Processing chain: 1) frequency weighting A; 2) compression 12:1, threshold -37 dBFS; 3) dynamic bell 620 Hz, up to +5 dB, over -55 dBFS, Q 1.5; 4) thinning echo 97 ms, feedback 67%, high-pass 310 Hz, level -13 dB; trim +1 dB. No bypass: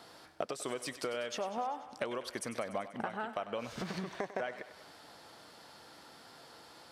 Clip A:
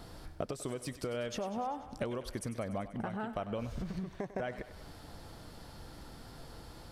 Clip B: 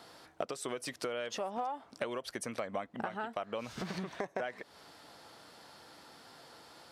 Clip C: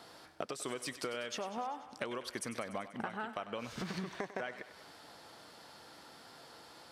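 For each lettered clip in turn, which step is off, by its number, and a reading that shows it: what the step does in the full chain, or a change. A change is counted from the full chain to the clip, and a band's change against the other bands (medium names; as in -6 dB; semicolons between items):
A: 1, 125 Hz band +10.5 dB; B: 4, echo-to-direct -11.0 dB to none; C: 3, momentary loudness spread change -2 LU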